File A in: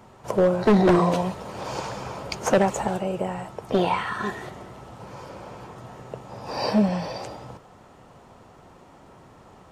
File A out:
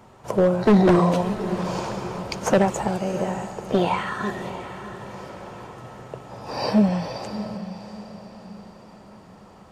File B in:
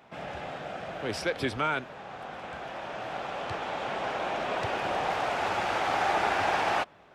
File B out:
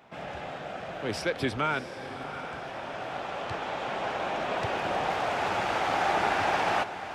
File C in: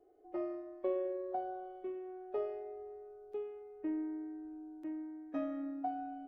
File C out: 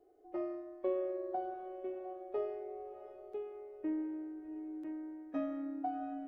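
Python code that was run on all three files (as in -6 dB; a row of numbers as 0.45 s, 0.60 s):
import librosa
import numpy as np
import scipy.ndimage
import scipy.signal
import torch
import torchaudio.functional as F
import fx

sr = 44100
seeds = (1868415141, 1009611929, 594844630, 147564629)

p1 = fx.dynamic_eq(x, sr, hz=170.0, q=0.87, threshold_db=-39.0, ratio=4.0, max_db=3)
y = p1 + fx.echo_diffused(p1, sr, ms=686, feedback_pct=44, wet_db=-11.5, dry=0)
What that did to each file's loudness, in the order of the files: +1.0 LU, +0.5 LU, +0.5 LU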